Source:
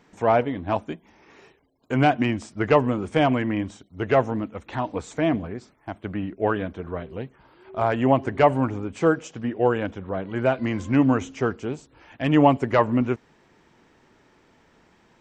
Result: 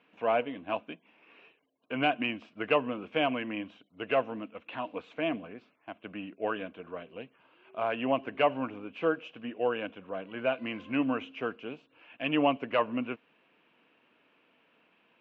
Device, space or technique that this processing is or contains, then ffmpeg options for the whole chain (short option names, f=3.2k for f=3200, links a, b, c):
phone earpiece: -af "highpass=360,equalizer=f=380:t=q:w=4:g=-10,equalizer=f=580:t=q:w=4:g=-3,equalizer=f=850:t=q:w=4:g=-10,equalizer=f=1.3k:t=q:w=4:g=-4,equalizer=f=1.9k:t=q:w=4:g=-9,equalizer=f=2.7k:t=q:w=4:g=9,lowpass=f=3k:w=0.5412,lowpass=f=3k:w=1.3066,volume=-2.5dB"